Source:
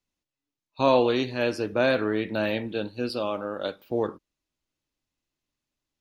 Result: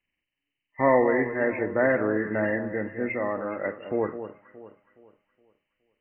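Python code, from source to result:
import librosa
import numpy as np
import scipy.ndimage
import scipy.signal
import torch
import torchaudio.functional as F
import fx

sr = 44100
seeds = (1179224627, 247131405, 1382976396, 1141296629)

y = fx.freq_compress(x, sr, knee_hz=1600.0, ratio=4.0)
y = fx.hum_notches(y, sr, base_hz=60, count=2)
y = fx.echo_alternate(y, sr, ms=209, hz=1300.0, feedback_pct=58, wet_db=-10.0)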